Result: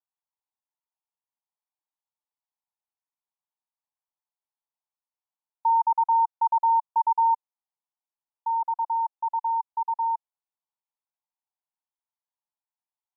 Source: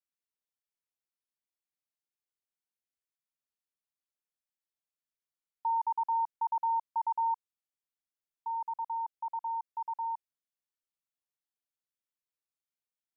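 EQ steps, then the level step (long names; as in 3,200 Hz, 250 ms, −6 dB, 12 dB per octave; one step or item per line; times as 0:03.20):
high-pass filter 660 Hz 24 dB per octave
low-pass with resonance 910 Hz, resonance Q 3.9
−2.5 dB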